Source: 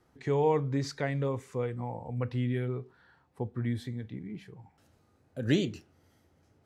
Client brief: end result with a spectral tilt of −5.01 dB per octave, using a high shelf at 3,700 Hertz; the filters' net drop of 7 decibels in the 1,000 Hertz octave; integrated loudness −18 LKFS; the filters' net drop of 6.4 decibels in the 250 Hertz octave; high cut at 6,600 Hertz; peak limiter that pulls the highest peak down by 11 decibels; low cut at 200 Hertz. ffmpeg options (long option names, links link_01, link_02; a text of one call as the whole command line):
ffmpeg -i in.wav -af "highpass=200,lowpass=6600,equalizer=frequency=250:width_type=o:gain=-5.5,equalizer=frequency=1000:width_type=o:gain=-9,highshelf=frequency=3700:gain=5.5,volume=22dB,alimiter=limit=-5.5dB:level=0:latency=1" out.wav